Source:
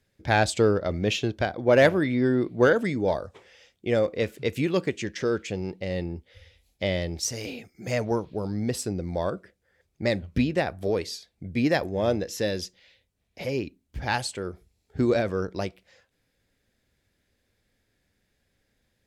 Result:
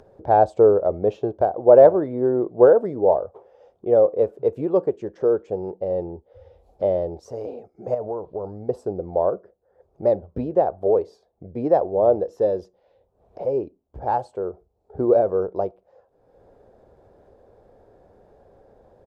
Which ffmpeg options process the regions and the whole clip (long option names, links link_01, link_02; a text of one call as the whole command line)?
ffmpeg -i in.wav -filter_complex "[0:a]asettb=1/sr,asplit=3[link_01][link_02][link_03];[link_01]atrim=end=7.944[link_04];[link_02]atrim=start=7.94:end=8.69,asetpts=PTS-STARTPTS,afade=type=in:duration=0.004:curve=qsin,afade=type=out:start_time=0.746:duration=0.004:curve=qsin,asubboost=boost=7:cutoff=110,acompressor=threshold=-29dB:ratio=10:attack=3.2:release=140:knee=1:detection=peak[link_05];[link_03]atrim=start=8.686[link_06];[link_04][link_05]acrossfade=duration=0.004:curve1=hsin:curve2=qsin[link_07];[link_07][link_06]acrossfade=duration=0.004:curve1=qsin:curve2=hsin,firequalizer=gain_entry='entry(260,0);entry(410,13);entry(770,14);entry(2000,-18)':delay=0.05:min_phase=1,acompressor=mode=upward:threshold=-31dB:ratio=2.5,highshelf=frequency=11000:gain=-8,volume=-5dB" out.wav